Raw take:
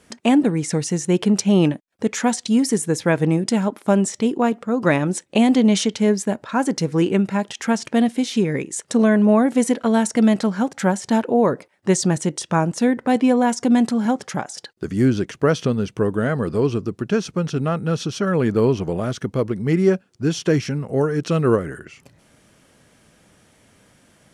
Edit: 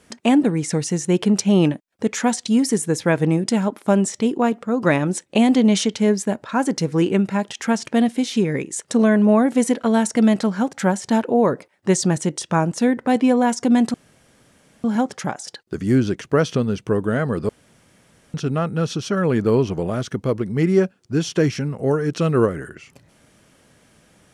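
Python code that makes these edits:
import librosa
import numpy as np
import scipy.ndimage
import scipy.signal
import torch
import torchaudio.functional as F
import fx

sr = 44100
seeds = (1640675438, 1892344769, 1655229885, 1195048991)

y = fx.edit(x, sr, fx.insert_room_tone(at_s=13.94, length_s=0.9),
    fx.room_tone_fill(start_s=16.59, length_s=0.85), tone=tone)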